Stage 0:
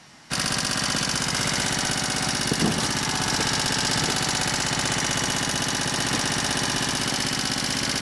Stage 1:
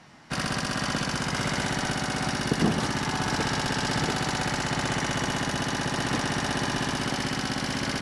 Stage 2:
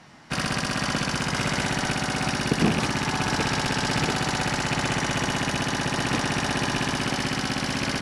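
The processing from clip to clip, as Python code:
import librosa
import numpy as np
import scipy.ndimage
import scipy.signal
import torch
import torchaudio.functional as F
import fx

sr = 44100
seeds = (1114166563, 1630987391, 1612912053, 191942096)

y1 = fx.high_shelf(x, sr, hz=3200.0, db=-12.0)
y2 = fx.rattle_buzz(y1, sr, strikes_db=-27.0, level_db=-19.0)
y2 = F.gain(torch.from_numpy(y2), 2.0).numpy()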